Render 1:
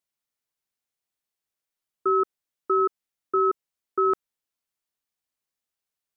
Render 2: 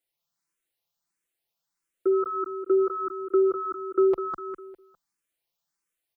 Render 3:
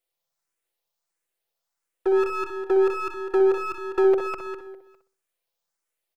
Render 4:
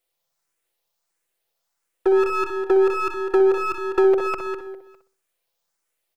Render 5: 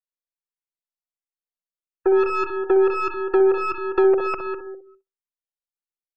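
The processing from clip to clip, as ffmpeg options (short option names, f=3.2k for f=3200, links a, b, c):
-filter_complex "[0:a]aecho=1:1:5.9:0.81,aecho=1:1:202|404|606|808:0.562|0.191|0.065|0.0221,asplit=2[a][b];[b]afreqshift=1.5[c];[a][c]amix=inputs=2:normalize=1,volume=3dB"
-filter_complex "[0:a]acrossover=split=430[a][b];[b]aeval=exprs='max(val(0),0)':c=same[c];[a][c]amix=inputs=2:normalize=0,lowshelf=f=350:t=q:w=1.5:g=-9.5,asplit=2[d][e];[e]adelay=62,lowpass=f=880:p=1,volume=-4.5dB,asplit=2[f][g];[g]adelay=62,lowpass=f=880:p=1,volume=0.4,asplit=2[h][i];[i]adelay=62,lowpass=f=880:p=1,volume=0.4,asplit=2[j][k];[k]adelay=62,lowpass=f=880:p=1,volume=0.4,asplit=2[l][m];[m]adelay=62,lowpass=f=880:p=1,volume=0.4[n];[d][f][h][j][l][n]amix=inputs=6:normalize=0,volume=4.5dB"
-af "acompressor=threshold=-21dB:ratio=2,volume=5.5dB"
-af "afftdn=nr=28:nf=-40"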